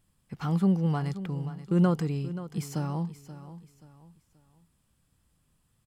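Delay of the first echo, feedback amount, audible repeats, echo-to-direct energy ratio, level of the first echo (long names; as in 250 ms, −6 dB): 530 ms, 34%, 3, −13.5 dB, −14.0 dB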